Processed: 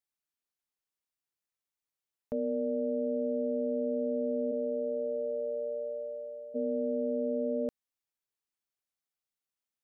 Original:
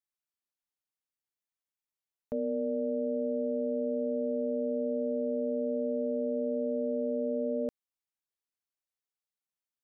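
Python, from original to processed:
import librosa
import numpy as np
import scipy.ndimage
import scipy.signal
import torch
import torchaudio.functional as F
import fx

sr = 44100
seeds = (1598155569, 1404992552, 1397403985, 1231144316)

y = fx.highpass(x, sr, hz=fx.line((4.51, 240.0), (6.54, 780.0)), slope=24, at=(4.51, 6.54), fade=0.02)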